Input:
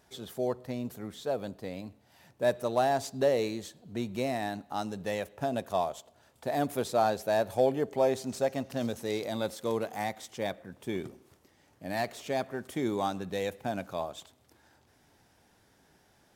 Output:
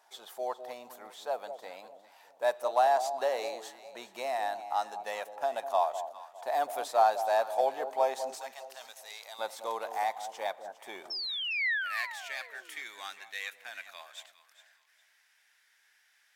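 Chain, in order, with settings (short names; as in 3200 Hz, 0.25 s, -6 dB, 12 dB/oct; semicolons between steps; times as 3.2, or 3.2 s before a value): 8.37–9.39 passive tone stack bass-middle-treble 10-0-10; 11.1–12.8 painted sound fall 270–5500 Hz -34 dBFS; echo with dull and thin repeats by turns 0.203 s, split 890 Hz, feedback 51%, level -9 dB; high-pass sweep 820 Hz -> 1900 Hz, 11.05–11.69; gain -2 dB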